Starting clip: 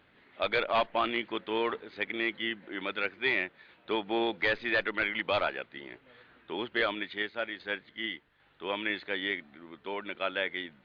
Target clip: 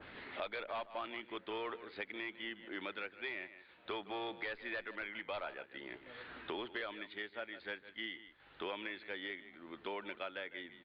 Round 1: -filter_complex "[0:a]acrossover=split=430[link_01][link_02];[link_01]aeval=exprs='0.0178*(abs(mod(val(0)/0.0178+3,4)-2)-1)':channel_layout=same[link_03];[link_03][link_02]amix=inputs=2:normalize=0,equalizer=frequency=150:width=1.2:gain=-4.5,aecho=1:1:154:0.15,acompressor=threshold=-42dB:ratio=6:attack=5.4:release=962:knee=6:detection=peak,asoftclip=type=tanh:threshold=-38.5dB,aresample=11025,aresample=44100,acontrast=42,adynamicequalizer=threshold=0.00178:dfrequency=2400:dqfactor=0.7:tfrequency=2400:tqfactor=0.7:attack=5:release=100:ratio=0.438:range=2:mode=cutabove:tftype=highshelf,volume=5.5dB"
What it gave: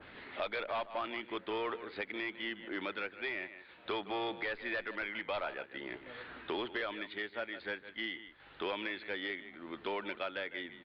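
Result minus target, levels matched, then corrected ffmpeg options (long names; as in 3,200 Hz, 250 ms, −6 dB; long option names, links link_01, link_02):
downward compressor: peak gain reduction −6 dB
-filter_complex "[0:a]acrossover=split=430[link_01][link_02];[link_01]aeval=exprs='0.0178*(abs(mod(val(0)/0.0178+3,4)-2)-1)':channel_layout=same[link_03];[link_03][link_02]amix=inputs=2:normalize=0,equalizer=frequency=150:width=1.2:gain=-4.5,aecho=1:1:154:0.15,acompressor=threshold=-49dB:ratio=6:attack=5.4:release=962:knee=6:detection=peak,asoftclip=type=tanh:threshold=-38.5dB,aresample=11025,aresample=44100,acontrast=42,adynamicequalizer=threshold=0.00178:dfrequency=2400:dqfactor=0.7:tfrequency=2400:tqfactor=0.7:attack=5:release=100:ratio=0.438:range=2:mode=cutabove:tftype=highshelf,volume=5.5dB"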